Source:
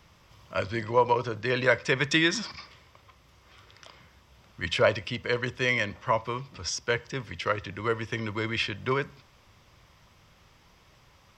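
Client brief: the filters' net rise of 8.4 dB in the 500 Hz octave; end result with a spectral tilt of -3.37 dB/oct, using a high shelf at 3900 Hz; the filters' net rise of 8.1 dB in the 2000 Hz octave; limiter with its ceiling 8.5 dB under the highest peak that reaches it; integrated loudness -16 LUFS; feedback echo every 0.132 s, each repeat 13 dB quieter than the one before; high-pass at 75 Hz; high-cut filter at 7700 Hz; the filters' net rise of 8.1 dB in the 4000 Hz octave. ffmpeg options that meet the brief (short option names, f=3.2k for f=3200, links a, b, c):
-af "highpass=75,lowpass=7.7k,equalizer=f=500:t=o:g=9,equalizer=f=2k:t=o:g=7,highshelf=f=3.9k:g=3.5,equalizer=f=4k:t=o:g=6,alimiter=limit=-10dB:level=0:latency=1,aecho=1:1:132|264|396:0.224|0.0493|0.0108,volume=7dB"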